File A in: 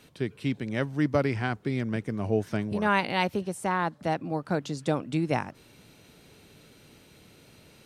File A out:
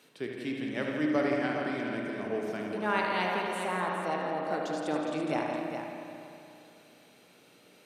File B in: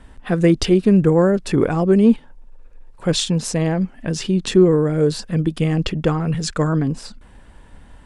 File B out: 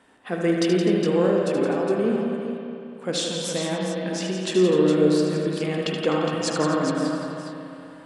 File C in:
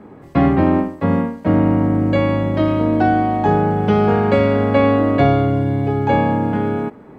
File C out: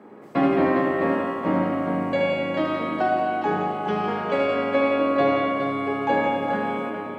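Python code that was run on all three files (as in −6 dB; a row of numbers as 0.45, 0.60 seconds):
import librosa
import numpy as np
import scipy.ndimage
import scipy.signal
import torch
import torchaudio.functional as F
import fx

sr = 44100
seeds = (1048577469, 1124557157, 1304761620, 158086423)

y = scipy.signal.sosfilt(scipy.signal.butter(2, 280.0, 'highpass', fs=sr, output='sos'), x)
y = fx.rider(y, sr, range_db=3, speed_s=2.0)
y = fx.echo_multitap(y, sr, ms=(76, 169, 252, 412), db=(-7.5, -8.0, -13.5, -7.5))
y = fx.rev_spring(y, sr, rt60_s=2.9, pass_ms=(33, 59), chirp_ms=60, drr_db=1.0)
y = F.gain(torch.from_numpy(y), -6.0).numpy()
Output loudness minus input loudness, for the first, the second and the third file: −3.0, −5.0, −6.5 LU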